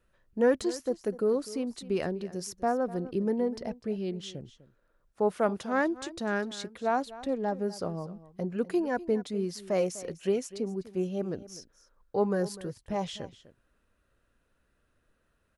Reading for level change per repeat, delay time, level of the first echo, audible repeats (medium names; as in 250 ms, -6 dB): no regular repeats, 250 ms, -17.0 dB, 1